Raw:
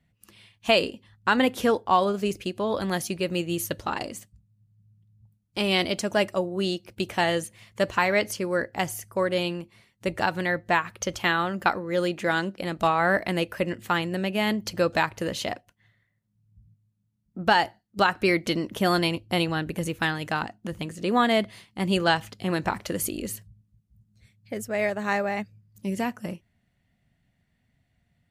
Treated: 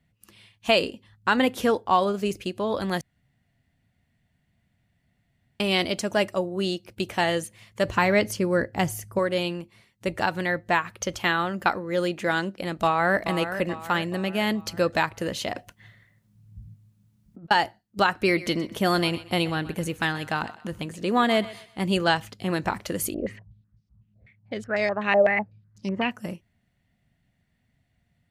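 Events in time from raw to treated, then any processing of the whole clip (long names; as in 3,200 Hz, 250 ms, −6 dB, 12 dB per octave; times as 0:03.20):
0:03.01–0:05.60: fill with room tone
0:07.85–0:09.19: low-shelf EQ 290 Hz +9.5 dB
0:12.72–0:13.24: delay throw 430 ms, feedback 50%, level −10 dB
0:15.53–0:17.51: compressor whose output falls as the input rises −45 dBFS
0:18.23–0:21.79: feedback echo with a high-pass in the loop 126 ms, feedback 36%, level −16 dB
0:23.14–0:26.11: low-pass on a step sequencer 8 Hz 620–5,100 Hz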